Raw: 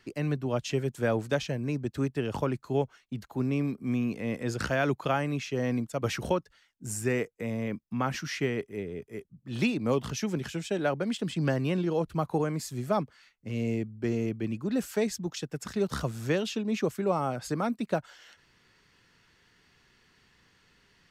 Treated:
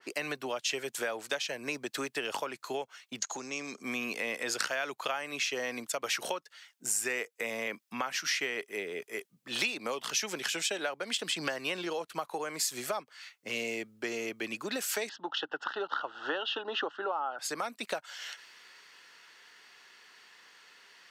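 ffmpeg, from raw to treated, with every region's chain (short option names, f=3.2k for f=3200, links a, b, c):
-filter_complex "[0:a]asettb=1/sr,asplit=3[a][b][c];[a]atrim=end=3.194[d];[b]atrim=start=3.19:end=3.83,asetpts=PTS-STARTPTS,afade=t=in:d=0.004:c=qsin,afade=t=out:st=0.636:d=0.004:c=qsin,lowpass=f=6.6k:t=q:w=11,acompressor=threshold=-33dB:ratio=12:attack=3.2:release=140:knee=1:detection=peak[e];[c]atrim=start=3.826[f];[d][e]acrossfade=d=0.004:c1=hsin:c2=qsin[g];[g][f]acrossfade=d=0.004:c1=qsin:c2=hsin,asettb=1/sr,asplit=3[h][i][j];[h]atrim=end=15.094[k];[i]atrim=start=15.09:end=17.39,asetpts=PTS-STARTPTS,afade=t=in:d=0.004:c=qsin,afade=t=out:st=2.296:d=0.004:c=qsin,asuperstop=centerf=2300:order=4:qfactor=2.5,aeval=exprs='val(0)+0.00224*(sin(2*PI*50*n/s)+sin(2*PI*2*50*n/s)/2+sin(2*PI*3*50*n/s)/3+sin(2*PI*4*50*n/s)/4+sin(2*PI*5*50*n/s)/5)':c=same,highpass=210,equalizer=f=210:t=q:w=4:g=-10,equalizer=f=300:t=q:w=4:g=7,equalizer=f=850:t=q:w=4:g=10,equalizer=f=1.4k:t=q:w=4:g=10,equalizer=f=2.1k:t=q:w=4:g=-5,equalizer=f=2.9k:t=q:w=4:g=6,lowpass=f=3.2k:w=0.5412,lowpass=f=3.2k:w=1.3066[l];[j]atrim=start=17.386[m];[k][l]acrossfade=d=0.004:c1=hsin:c2=qsin[n];[n][m]acrossfade=d=0.004:c1=qsin:c2=hsin,highpass=620,acompressor=threshold=-42dB:ratio=5,adynamicequalizer=threshold=0.00126:dfrequency=1700:dqfactor=0.7:tfrequency=1700:tqfactor=0.7:attack=5:release=100:ratio=0.375:range=3:mode=boostabove:tftype=highshelf,volume=8.5dB"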